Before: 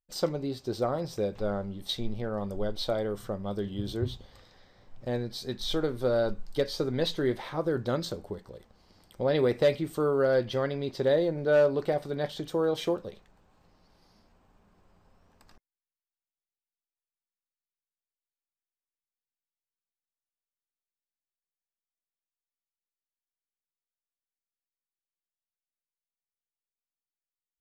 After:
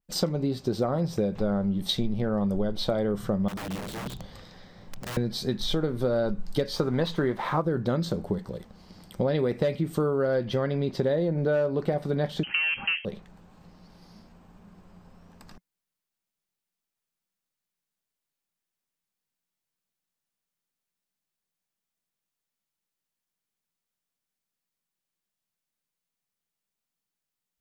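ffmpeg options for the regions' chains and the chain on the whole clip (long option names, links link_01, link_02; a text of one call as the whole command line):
ffmpeg -i in.wav -filter_complex "[0:a]asettb=1/sr,asplit=3[link_01][link_02][link_03];[link_01]atrim=end=3.484[link_04];[link_02]atrim=start=3.48:end=5.17,asetpts=PTS-STARTPTS,afade=type=in:duration=0.004:curve=qsin,afade=type=out:start_time=1.686:duration=0.004:curve=qsin,acompressor=threshold=-41dB:ratio=3:attack=3.2:release=140:knee=1:detection=peak,aeval=exprs='(mod(89.1*val(0)+1,2)-1)/89.1':channel_layout=same[link_05];[link_03]atrim=start=5.166[link_06];[link_04][link_05]acrossfade=duration=0.004:curve1=hsin:curve2=qsin[link_07];[link_07][link_06]acrossfade=duration=0.004:curve1=qsin:curve2=hsin,asettb=1/sr,asplit=3[link_08][link_09][link_10];[link_08]atrim=end=6.764[link_11];[link_09]atrim=start=6.76:end=7.62,asetpts=PTS-STARTPTS,afade=type=in:duration=0.004:curve=qsin,afade=type=out:start_time=0.856:duration=0.004:curve=qsin,equalizer=frequency=1100:width=1.1:gain=9.5,aeval=exprs='sgn(val(0))*max(abs(val(0))-0.002,0)':channel_layout=same[link_12];[link_10]atrim=start=7.616[link_13];[link_11][link_12]acrossfade=duration=0.004:curve1=hsin:curve2=qsin[link_14];[link_14][link_13]acrossfade=duration=0.004:curve1=qsin:curve2=hsin,asettb=1/sr,asplit=3[link_15][link_16][link_17];[link_15]atrim=end=12.434[link_18];[link_16]atrim=start=12.43:end=13.05,asetpts=PTS-STARTPTS,afade=type=in:duration=0.004:curve=qsin,afade=type=out:start_time=0.616:duration=0.004:curve=qsin,equalizer=frequency=750:width_type=o:width=1.9:gain=12.5,aeval=exprs='(tanh(7.94*val(0)+0.15)-tanh(0.15))/7.94':channel_layout=same,lowpass=frequency=2700:width_type=q:width=0.5098,lowpass=frequency=2700:width_type=q:width=0.6013,lowpass=frequency=2700:width_type=q:width=0.9,lowpass=frequency=2700:width_type=q:width=2.563,afreqshift=-3200[link_19];[link_17]atrim=start=13.046[link_20];[link_18][link_19]acrossfade=duration=0.004:curve1=hsin:curve2=qsin[link_21];[link_21][link_20]acrossfade=duration=0.004:curve1=qsin:curve2=hsin,equalizer=frequency=180:width_type=o:width=0.71:gain=10,acompressor=threshold=-30dB:ratio=6,adynamicequalizer=threshold=0.00224:dfrequency=2800:dqfactor=0.7:tfrequency=2800:tqfactor=0.7:attack=5:release=100:ratio=0.375:range=2.5:mode=cutabove:tftype=highshelf,volume=7.5dB" out.wav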